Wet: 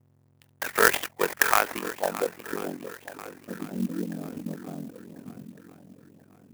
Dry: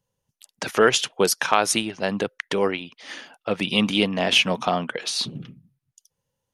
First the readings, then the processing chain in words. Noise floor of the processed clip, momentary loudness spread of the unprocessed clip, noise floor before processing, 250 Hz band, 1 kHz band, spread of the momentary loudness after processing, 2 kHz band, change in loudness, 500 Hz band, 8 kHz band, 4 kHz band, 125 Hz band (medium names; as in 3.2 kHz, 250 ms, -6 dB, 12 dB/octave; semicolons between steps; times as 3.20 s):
-63 dBFS, 15 LU, -83 dBFS, -7.5 dB, -4.0 dB, 21 LU, -2.0 dB, -5.0 dB, -7.0 dB, -6.0 dB, -14.5 dB, -8.0 dB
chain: in parallel at -9 dB: sample-rate reducer 1.4 kHz, jitter 0%; on the sum: frequency weighting A; low-pass sweep 2 kHz -> 250 Hz, 1.62–2.61 s; hum notches 50/100/150/200 Hz; on a send: shuffle delay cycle 1040 ms, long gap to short 1.5:1, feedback 41%, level -14 dB; on the sum: mains buzz 120 Hz, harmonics 38, -58 dBFS -9 dB/octave; ring modulator 22 Hz; sampling jitter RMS 0.053 ms; trim -2 dB